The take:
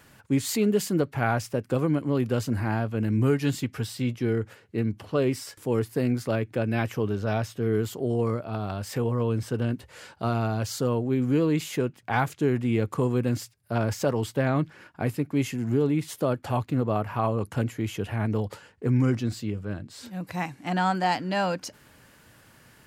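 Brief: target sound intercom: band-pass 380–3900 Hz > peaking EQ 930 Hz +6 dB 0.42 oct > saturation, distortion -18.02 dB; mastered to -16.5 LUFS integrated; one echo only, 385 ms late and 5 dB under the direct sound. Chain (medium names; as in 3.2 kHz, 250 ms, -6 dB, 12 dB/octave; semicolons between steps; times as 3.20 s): band-pass 380–3900 Hz; peaking EQ 930 Hz +6 dB 0.42 oct; delay 385 ms -5 dB; saturation -17.5 dBFS; trim +14 dB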